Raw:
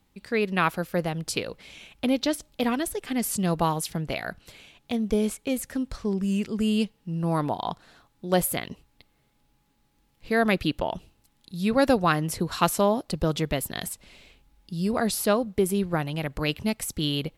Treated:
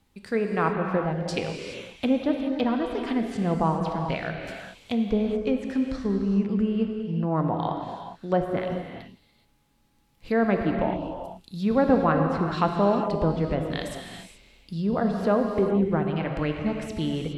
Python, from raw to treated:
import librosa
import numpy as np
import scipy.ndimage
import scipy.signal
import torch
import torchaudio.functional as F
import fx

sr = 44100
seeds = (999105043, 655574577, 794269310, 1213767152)

y = fx.env_lowpass_down(x, sr, base_hz=1300.0, full_db=-22.0)
y = fx.rev_gated(y, sr, seeds[0], gate_ms=450, shape='flat', drr_db=2.5)